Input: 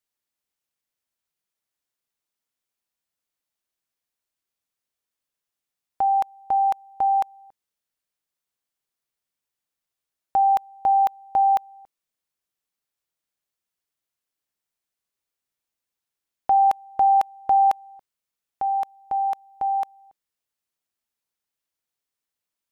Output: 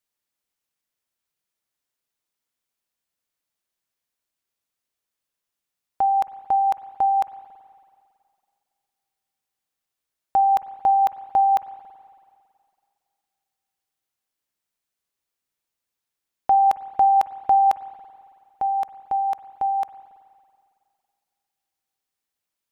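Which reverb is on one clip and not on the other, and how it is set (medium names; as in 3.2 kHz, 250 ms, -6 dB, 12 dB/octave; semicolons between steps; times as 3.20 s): spring tank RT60 2.3 s, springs 46/55 ms, chirp 70 ms, DRR 13.5 dB; trim +1.5 dB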